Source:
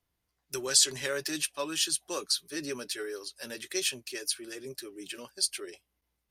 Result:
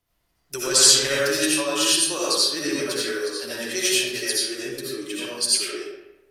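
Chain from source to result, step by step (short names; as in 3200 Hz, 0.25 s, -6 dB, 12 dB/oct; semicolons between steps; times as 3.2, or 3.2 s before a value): digital reverb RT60 1 s, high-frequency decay 0.65×, pre-delay 40 ms, DRR -7.5 dB; gain +3.5 dB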